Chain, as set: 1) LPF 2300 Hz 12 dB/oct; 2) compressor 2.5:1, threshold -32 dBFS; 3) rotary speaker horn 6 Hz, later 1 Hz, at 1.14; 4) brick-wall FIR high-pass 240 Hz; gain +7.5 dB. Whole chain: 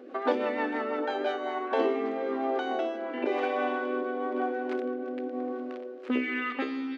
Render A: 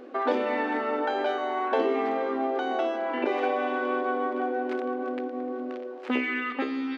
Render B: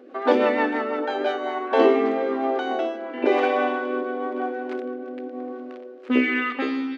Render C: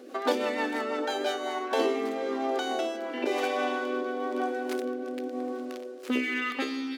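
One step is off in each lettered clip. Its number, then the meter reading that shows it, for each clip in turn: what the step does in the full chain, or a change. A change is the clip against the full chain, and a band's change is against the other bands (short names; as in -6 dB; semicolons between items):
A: 3, crest factor change -2.5 dB; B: 2, mean gain reduction 4.5 dB; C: 1, 4 kHz band +7.0 dB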